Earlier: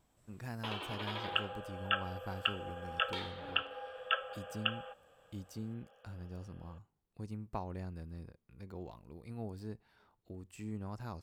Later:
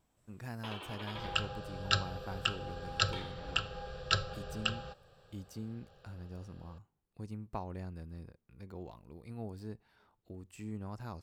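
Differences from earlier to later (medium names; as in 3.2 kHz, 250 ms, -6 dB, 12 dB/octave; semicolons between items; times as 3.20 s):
first sound -3.5 dB; second sound: remove brick-wall FIR band-pass 430–3500 Hz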